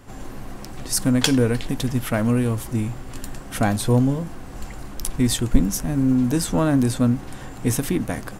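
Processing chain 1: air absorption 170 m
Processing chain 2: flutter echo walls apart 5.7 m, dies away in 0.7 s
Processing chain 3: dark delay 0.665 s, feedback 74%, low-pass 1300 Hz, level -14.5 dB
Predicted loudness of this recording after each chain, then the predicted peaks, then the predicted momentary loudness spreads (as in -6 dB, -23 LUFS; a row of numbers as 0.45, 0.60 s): -22.5, -18.0, -22.0 LUFS; -2.0, -1.0, -1.5 dBFS; 19, 19, 13 LU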